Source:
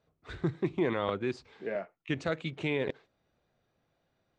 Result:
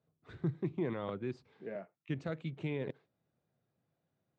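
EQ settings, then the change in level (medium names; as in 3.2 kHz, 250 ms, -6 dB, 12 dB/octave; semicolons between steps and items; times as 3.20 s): band-pass filter 130 Hz, Q 1.6; tilt EQ +4.5 dB/octave; +12.0 dB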